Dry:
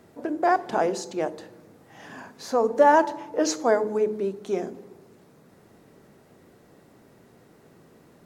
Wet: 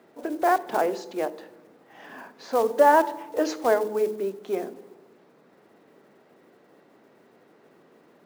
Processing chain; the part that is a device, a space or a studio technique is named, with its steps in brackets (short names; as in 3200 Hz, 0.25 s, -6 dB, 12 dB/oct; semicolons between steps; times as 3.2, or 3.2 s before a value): early digital voice recorder (BPF 270–3700 Hz; block floating point 5-bit)